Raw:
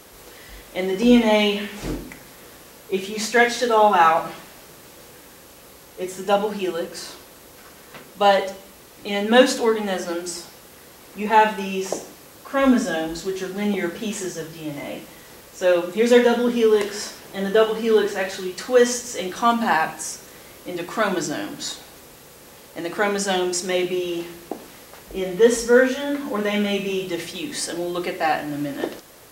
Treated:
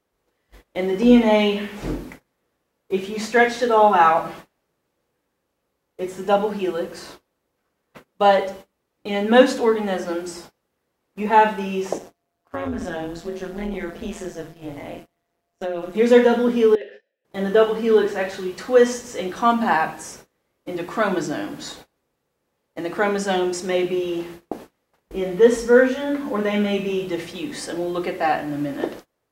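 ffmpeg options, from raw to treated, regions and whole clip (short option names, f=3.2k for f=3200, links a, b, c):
-filter_complex "[0:a]asettb=1/sr,asplit=3[a][b][c];[a]atrim=end=11.984[d];[b]atrim=start=11.98:end=15.95,asetpts=PTS-STARTPTS,afade=t=in:d=0.004:c=qsin,afade=t=out:st=3.966:d=0.004:c=qsin,tremolo=f=170:d=0.824,acompressor=threshold=-23dB:ratio=6:attack=3.2:release=140:knee=1:detection=peak,aeval=exprs='val(0)+0.00282*sin(2*PI*690*n/s)':c=same[e];[c]atrim=start=15.946[f];[d][e]acrossfade=d=0.004:c1=hsin:c2=qsin[g];[g][f]acrossfade=d=0.004:c1=qsin:c2=hsin,asettb=1/sr,asplit=3[h][i][j];[h]atrim=end=16.754[k];[i]atrim=start=16.75:end=17.25,asetpts=PTS-STARTPTS,afade=t=in:d=0.004:c=qsin,afade=t=out:st=0.496:d=0.004:c=qsin,asplit=3[l][m][n];[l]bandpass=f=530:t=q:w=8,volume=0dB[o];[m]bandpass=f=1.84k:t=q:w=8,volume=-6dB[p];[n]bandpass=f=2.48k:t=q:w=8,volume=-9dB[q];[o][p][q]amix=inputs=3:normalize=0,adynamicsmooth=sensitivity=2.5:basefreq=4k,equalizer=f=3.6k:w=1.5:g=9[r];[j]atrim=start=17.246[s];[k][r]acrossfade=d=0.004:c1=hsin:c2=qsin[t];[t][s]acrossfade=d=0.004:c1=qsin:c2=hsin,agate=range=-28dB:threshold=-38dB:ratio=16:detection=peak,highshelf=f=3k:g=-10,volume=1.5dB"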